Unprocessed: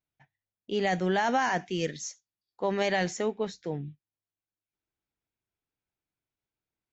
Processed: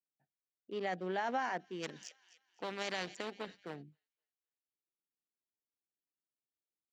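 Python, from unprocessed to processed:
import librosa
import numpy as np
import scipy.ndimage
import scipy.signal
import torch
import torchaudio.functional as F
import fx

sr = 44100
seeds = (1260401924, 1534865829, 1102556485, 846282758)

y = fx.wiener(x, sr, points=41)
y = scipy.signal.sosfilt(scipy.signal.butter(2, 260.0, 'highpass', fs=sr, output='sos'), y)
y = fx.high_shelf(y, sr, hz=5800.0, db=-8.5)
y = fx.notch(y, sr, hz=6500.0, q=12.0)
y = fx.echo_wet_highpass(y, sr, ms=257, feedback_pct=37, hz=2900.0, wet_db=-20)
y = fx.spectral_comp(y, sr, ratio=2.0, at=(1.82, 3.82), fade=0.02)
y = F.gain(torch.from_numpy(y), -8.0).numpy()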